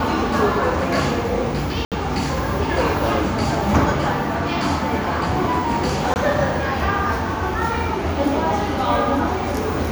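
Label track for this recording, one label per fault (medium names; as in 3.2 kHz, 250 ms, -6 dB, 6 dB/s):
1.850000	1.920000	dropout 67 ms
6.140000	6.160000	dropout 19 ms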